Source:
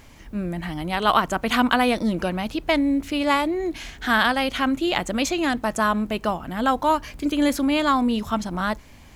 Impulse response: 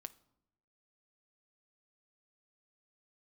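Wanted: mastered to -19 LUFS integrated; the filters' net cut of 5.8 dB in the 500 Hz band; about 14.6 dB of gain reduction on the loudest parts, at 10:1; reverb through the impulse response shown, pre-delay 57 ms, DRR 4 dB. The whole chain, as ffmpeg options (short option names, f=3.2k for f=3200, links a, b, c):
-filter_complex "[0:a]equalizer=f=500:t=o:g=-8,acompressor=threshold=-31dB:ratio=10,asplit=2[a][b];[1:a]atrim=start_sample=2205,adelay=57[c];[b][c]afir=irnorm=-1:irlink=0,volume=1.5dB[d];[a][d]amix=inputs=2:normalize=0,volume=14.5dB"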